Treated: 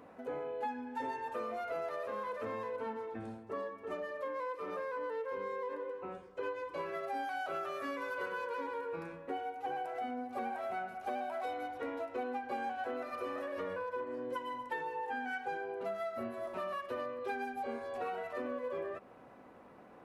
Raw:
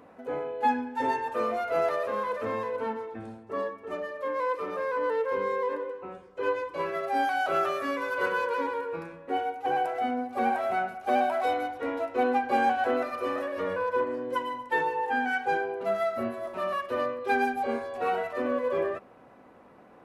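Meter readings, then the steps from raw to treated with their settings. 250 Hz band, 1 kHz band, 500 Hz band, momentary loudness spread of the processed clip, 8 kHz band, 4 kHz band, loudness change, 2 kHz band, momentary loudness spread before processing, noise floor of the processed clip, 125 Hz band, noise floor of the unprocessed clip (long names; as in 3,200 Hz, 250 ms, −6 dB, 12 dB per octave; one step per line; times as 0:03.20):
−10.0 dB, −11.0 dB, −9.5 dB, 4 LU, can't be measured, −10.5 dB, −10.5 dB, −10.5 dB, 8 LU, −56 dBFS, −8.0 dB, −53 dBFS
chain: downward compressor 5 to 1, threshold −34 dBFS, peak gain reduction 13 dB
level −2.5 dB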